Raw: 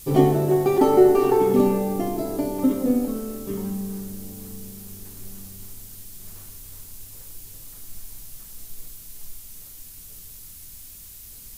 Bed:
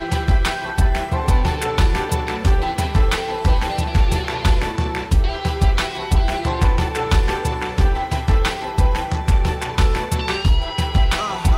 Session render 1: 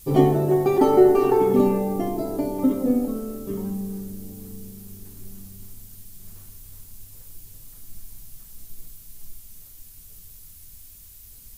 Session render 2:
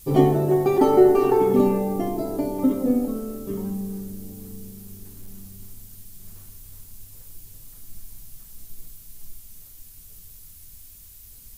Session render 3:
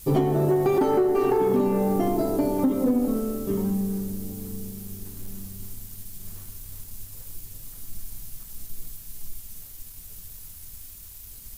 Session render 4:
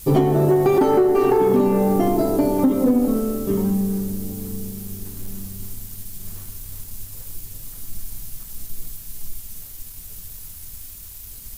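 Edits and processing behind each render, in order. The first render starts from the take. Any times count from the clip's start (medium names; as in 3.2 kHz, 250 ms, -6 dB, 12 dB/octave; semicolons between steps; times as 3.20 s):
noise reduction 6 dB, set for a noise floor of -43 dBFS
5.10–5.57 s: overload inside the chain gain 32.5 dB
compression 12:1, threshold -20 dBFS, peak gain reduction 11.5 dB; waveshaping leveller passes 1
trim +5 dB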